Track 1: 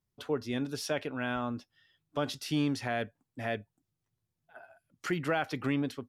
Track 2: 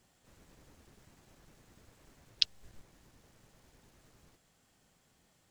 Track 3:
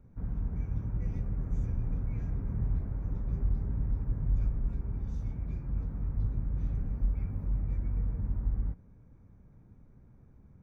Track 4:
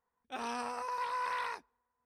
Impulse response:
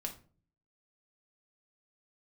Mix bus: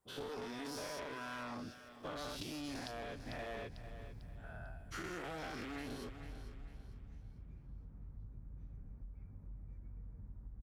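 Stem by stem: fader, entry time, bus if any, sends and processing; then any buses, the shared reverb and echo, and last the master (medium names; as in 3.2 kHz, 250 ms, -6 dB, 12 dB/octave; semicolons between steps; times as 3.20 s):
-8.5 dB, 0.00 s, no bus, no send, echo send -16 dB, every event in the spectrogram widened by 240 ms; one-sided clip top -33 dBFS
-1.5 dB, 0.00 s, bus A, no send, echo send -12 dB, expander on every frequency bin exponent 2; peak limiter -8 dBFS, peak gain reduction 4 dB
-17.0 dB, 2.00 s, bus A, no send, no echo send, none
-2.5 dB, 0.00 s, bus A, no send, no echo send, none
bus A: 0.0 dB, compression, threshold -45 dBFS, peak gain reduction 17.5 dB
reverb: none
echo: feedback delay 447 ms, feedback 36%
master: compression 6:1, threshold -41 dBFS, peak gain reduction 9.5 dB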